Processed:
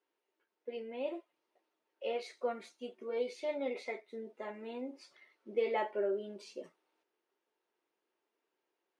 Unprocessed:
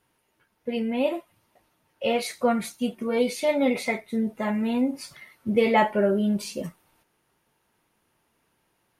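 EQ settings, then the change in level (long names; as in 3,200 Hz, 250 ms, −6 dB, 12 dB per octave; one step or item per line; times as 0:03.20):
four-pole ladder high-pass 320 Hz, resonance 50%
high-frequency loss of the air 140 metres
high-shelf EQ 4,100 Hz +9.5 dB
−6.5 dB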